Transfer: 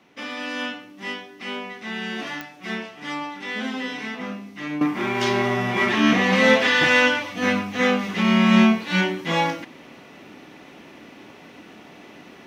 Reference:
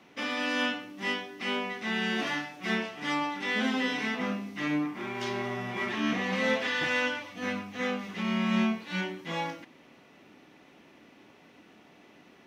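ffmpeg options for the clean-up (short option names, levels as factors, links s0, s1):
-af "adeclick=t=4,asetnsamples=n=441:p=0,asendcmd='4.81 volume volume -11.5dB',volume=1"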